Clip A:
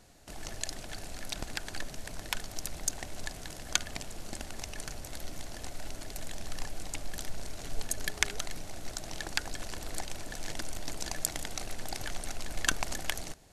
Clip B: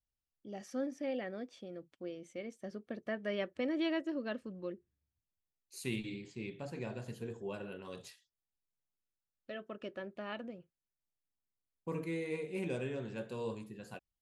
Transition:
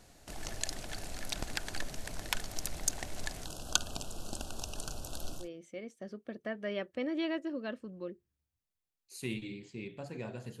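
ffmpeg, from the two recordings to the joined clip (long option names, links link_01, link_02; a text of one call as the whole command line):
ffmpeg -i cue0.wav -i cue1.wav -filter_complex "[0:a]asplit=3[link_01][link_02][link_03];[link_01]afade=type=out:start_time=3.44:duration=0.02[link_04];[link_02]asuperstop=centerf=2000:order=8:qfactor=1.9,afade=type=in:start_time=3.44:duration=0.02,afade=type=out:start_time=5.49:duration=0.02[link_05];[link_03]afade=type=in:start_time=5.49:duration=0.02[link_06];[link_04][link_05][link_06]amix=inputs=3:normalize=0,apad=whole_dur=10.6,atrim=end=10.6,atrim=end=5.49,asetpts=PTS-STARTPTS[link_07];[1:a]atrim=start=1.95:end=7.22,asetpts=PTS-STARTPTS[link_08];[link_07][link_08]acrossfade=duration=0.16:curve1=tri:curve2=tri" out.wav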